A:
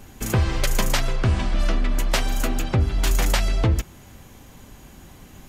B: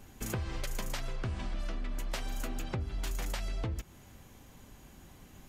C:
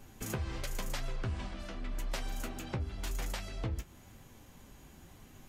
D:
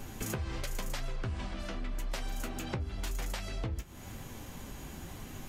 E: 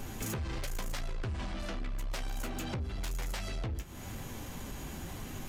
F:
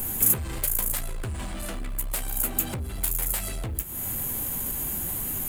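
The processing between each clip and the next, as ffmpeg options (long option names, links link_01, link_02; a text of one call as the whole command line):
ffmpeg -i in.wav -af "acompressor=threshold=-23dB:ratio=6,volume=-9dB" out.wav
ffmpeg -i in.wav -af "flanger=delay=7:depth=9.3:regen=-44:speed=0.94:shape=triangular,volume=3dB" out.wav
ffmpeg -i in.wav -af "acompressor=threshold=-49dB:ratio=2.5,volume=11dB" out.wav
ffmpeg -i in.wav -af "asoftclip=type=tanh:threshold=-34.5dB,volume=3.5dB" out.wav
ffmpeg -i in.wav -af "aexciter=amount=10.5:drive=5.2:freq=8100,volume=4dB" out.wav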